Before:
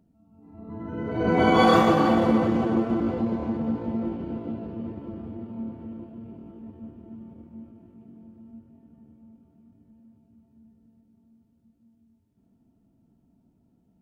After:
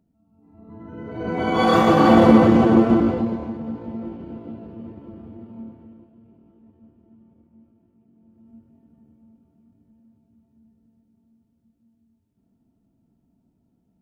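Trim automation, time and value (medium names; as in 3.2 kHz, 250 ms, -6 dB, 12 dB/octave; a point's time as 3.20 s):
1.44 s -4 dB
2.19 s +9 dB
2.94 s +9 dB
3.56 s -3 dB
5.60 s -3 dB
6.12 s -10.5 dB
8.11 s -10.5 dB
8.55 s -2 dB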